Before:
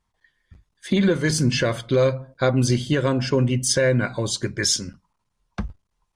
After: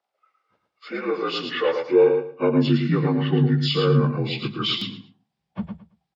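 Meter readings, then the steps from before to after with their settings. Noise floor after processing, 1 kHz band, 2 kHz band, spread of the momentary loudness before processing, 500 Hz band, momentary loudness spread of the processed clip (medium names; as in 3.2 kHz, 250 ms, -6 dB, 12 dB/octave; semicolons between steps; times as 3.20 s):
-81 dBFS, +1.5 dB, -4.5 dB, 15 LU, +1.0 dB, 16 LU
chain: frequency axis rescaled in octaves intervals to 82%; high-pass sweep 510 Hz -> 160 Hz, 1.68–2.90 s; on a send: feedback delay 111 ms, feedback 20%, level -6 dB; on the sum: buffer glitch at 4.78 s, samples 256, times 5; trim -2.5 dB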